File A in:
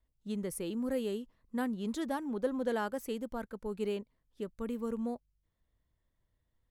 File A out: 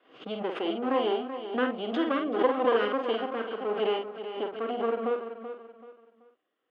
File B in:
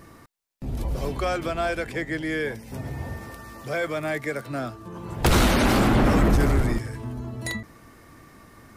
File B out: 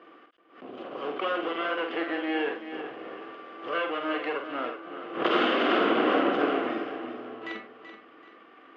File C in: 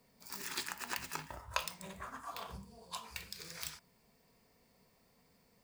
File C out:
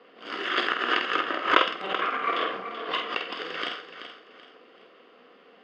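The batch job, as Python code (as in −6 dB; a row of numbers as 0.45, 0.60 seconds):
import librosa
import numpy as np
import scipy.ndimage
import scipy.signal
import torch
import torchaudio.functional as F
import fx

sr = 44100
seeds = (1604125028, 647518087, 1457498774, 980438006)

p1 = fx.lower_of_two(x, sr, delay_ms=0.61)
p2 = fx.cabinet(p1, sr, low_hz=310.0, low_slope=24, high_hz=3000.0, hz=(320.0, 480.0, 760.0, 1200.0, 1800.0, 2900.0), db=(4, 5, 8, 5, -4, 7))
p3 = fx.notch(p2, sr, hz=880.0, q=5.7)
p4 = fx.doubler(p3, sr, ms=48.0, db=-5.5)
p5 = p4 + fx.echo_feedback(p4, sr, ms=382, feedback_pct=32, wet_db=-10.5, dry=0)
p6 = fx.pre_swell(p5, sr, db_per_s=120.0)
y = p6 * 10.0 ** (-30 / 20.0) / np.sqrt(np.mean(np.square(p6)))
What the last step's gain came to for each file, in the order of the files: +7.0, −2.5, +18.0 decibels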